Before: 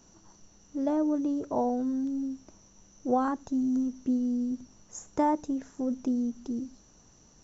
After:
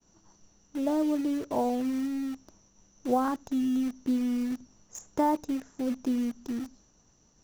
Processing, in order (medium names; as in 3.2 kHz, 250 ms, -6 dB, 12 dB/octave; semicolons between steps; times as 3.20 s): expander -55 dBFS; in parallel at -6 dB: word length cut 6-bit, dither none; on the sum: trim -3.5 dB